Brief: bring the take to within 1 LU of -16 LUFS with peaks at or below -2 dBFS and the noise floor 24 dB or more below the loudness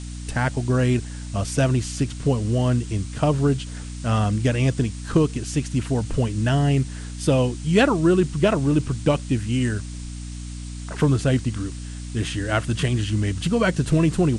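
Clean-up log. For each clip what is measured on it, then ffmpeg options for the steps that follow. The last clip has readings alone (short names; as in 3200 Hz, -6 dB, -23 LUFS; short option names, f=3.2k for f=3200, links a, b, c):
hum 60 Hz; harmonics up to 300 Hz; hum level -31 dBFS; noise floor -33 dBFS; noise floor target -47 dBFS; loudness -22.5 LUFS; peak -7.5 dBFS; loudness target -16.0 LUFS
-> -af "bandreject=f=60:t=h:w=4,bandreject=f=120:t=h:w=4,bandreject=f=180:t=h:w=4,bandreject=f=240:t=h:w=4,bandreject=f=300:t=h:w=4"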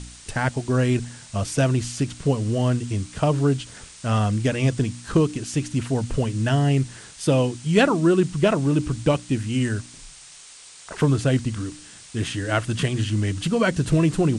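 hum none; noise floor -45 dBFS; noise floor target -47 dBFS
-> -af "afftdn=nr=6:nf=-45"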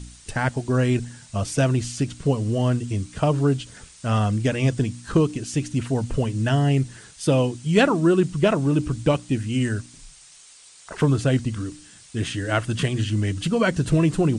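noise floor -49 dBFS; loudness -23.0 LUFS; peak -7.0 dBFS; loudness target -16.0 LUFS
-> -af "volume=7dB,alimiter=limit=-2dB:level=0:latency=1"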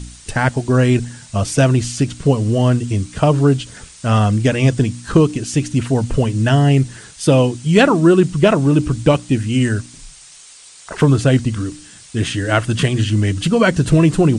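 loudness -16.0 LUFS; peak -2.0 dBFS; noise floor -42 dBFS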